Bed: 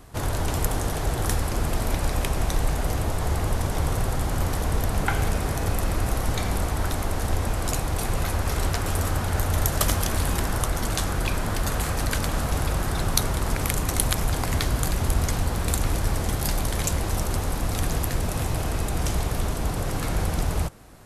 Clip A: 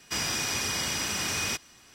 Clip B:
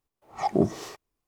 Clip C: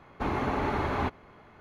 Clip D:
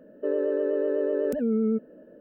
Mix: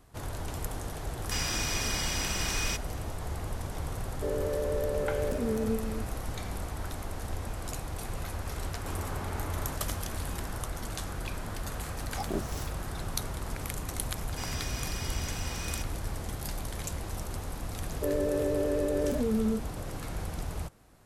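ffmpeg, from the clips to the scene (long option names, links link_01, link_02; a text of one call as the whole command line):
ffmpeg -i bed.wav -i cue0.wav -i cue1.wav -i cue2.wav -i cue3.wav -filter_complex "[1:a]asplit=2[link_01][link_02];[4:a]asplit=2[link_03][link_04];[0:a]volume=-11dB[link_05];[link_03]aecho=1:1:29.15|253.6:0.282|0.447[link_06];[3:a]flanger=delay=19:depth=7.6:speed=2.5[link_07];[2:a]aemphasis=mode=production:type=75kf[link_08];[link_04]asplit=2[link_09][link_10];[link_10]adelay=24,volume=-5dB[link_11];[link_09][link_11]amix=inputs=2:normalize=0[link_12];[link_01]atrim=end=1.94,asetpts=PTS-STARTPTS,volume=-3dB,afade=type=in:duration=0.004:curve=hsin,afade=type=out:start_time=1.936:duration=0.004:curve=hsin,adelay=1200[link_13];[link_06]atrim=end=2.2,asetpts=PTS-STARTPTS,volume=-6.5dB,afade=type=in:duration=0.004:curve=hsin,afade=type=out:start_time=2.196:duration=0.004:curve=hsin,adelay=3990[link_14];[link_07]atrim=end=1.6,asetpts=PTS-STARTPTS,volume=-9dB,afade=type=in:duration=0.004:curve=hsin,afade=type=out:start_time=1.596:duration=0.004:curve=hsin,adelay=8650[link_15];[link_08]atrim=end=1.27,asetpts=PTS-STARTPTS,volume=-11.5dB,afade=type=in:duration=0.004:curve=hsin,afade=type=out:start_time=1.266:duration=0.004:curve=hsin,adelay=11750[link_16];[link_02]atrim=end=1.94,asetpts=PTS-STARTPTS,volume=-10.5dB,afade=type=in:duration=0.004:curve=hsin,afade=type=out:start_time=1.936:duration=0.004:curve=hsin,adelay=14260[link_17];[link_12]atrim=end=2.2,asetpts=PTS-STARTPTS,volume=-3.5dB,afade=type=in:duration=0.004:curve=hsin,afade=type=out:start_time=2.196:duration=0.004:curve=hsin,adelay=17790[link_18];[link_05][link_13][link_14][link_15][link_16][link_17][link_18]amix=inputs=7:normalize=0" out.wav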